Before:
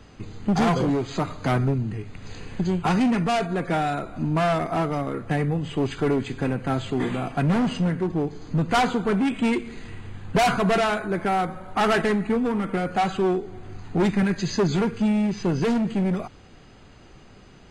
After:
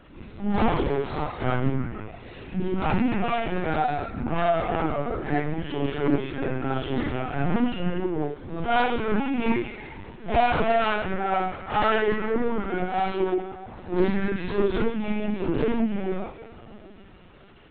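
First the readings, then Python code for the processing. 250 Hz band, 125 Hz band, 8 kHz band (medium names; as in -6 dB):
-3.5 dB, -5.0 dB, under -40 dB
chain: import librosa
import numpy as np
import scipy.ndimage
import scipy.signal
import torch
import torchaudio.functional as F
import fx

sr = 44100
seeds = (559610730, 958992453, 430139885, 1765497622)

y = fx.phase_scramble(x, sr, seeds[0], window_ms=200)
y = fx.highpass(y, sr, hz=120.0, slope=6)
y = fx.echo_stepped(y, sr, ms=155, hz=2800.0, octaves=-0.7, feedback_pct=70, wet_db=-8.0)
y = fx.lpc_vocoder(y, sr, seeds[1], excitation='pitch_kept', order=16)
y = fx.doppler_dist(y, sr, depth_ms=0.23)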